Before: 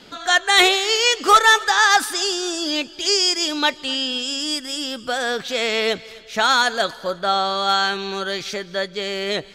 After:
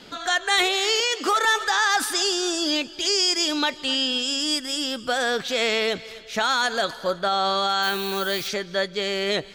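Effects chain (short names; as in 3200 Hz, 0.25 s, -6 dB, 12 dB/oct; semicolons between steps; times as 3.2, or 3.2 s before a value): 1–1.45 Chebyshev high-pass 220 Hz, order 6; limiter -12.5 dBFS, peak gain reduction 11 dB; 7.82–8.47 added noise violet -38 dBFS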